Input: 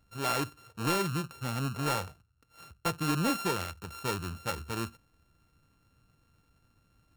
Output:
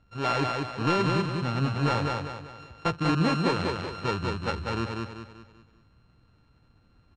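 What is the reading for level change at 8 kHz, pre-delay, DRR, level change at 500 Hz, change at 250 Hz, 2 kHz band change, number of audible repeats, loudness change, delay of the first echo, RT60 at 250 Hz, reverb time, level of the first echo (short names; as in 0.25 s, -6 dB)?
-8.0 dB, none, none, +6.5 dB, +6.0 dB, +5.0 dB, 5, +5.0 dB, 0.194 s, none, none, -3.5 dB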